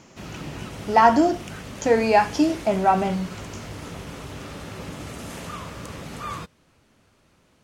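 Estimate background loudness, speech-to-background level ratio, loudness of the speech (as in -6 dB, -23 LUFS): -36.5 LUFS, 16.0 dB, -20.5 LUFS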